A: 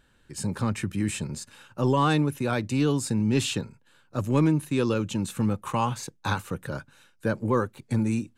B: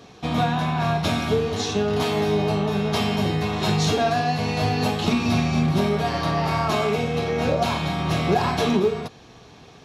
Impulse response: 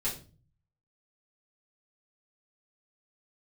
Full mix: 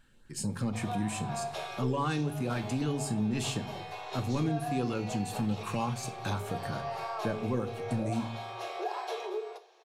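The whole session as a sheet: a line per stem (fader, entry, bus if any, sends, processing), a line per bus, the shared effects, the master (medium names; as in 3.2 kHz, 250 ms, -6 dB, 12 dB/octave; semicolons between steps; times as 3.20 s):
-3.0 dB, 0.00 s, send -11 dB, band-stop 3.7 kHz, Q 22; LFO notch saw up 3.9 Hz 370–3200 Hz
-16.0 dB, 0.50 s, send -12 dB, steep high-pass 350 Hz 96 dB/octave; peaking EQ 730 Hz +6.5 dB 0.85 oct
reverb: on, RT60 0.35 s, pre-delay 4 ms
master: compression 2:1, threshold -32 dBFS, peak gain reduction 7.5 dB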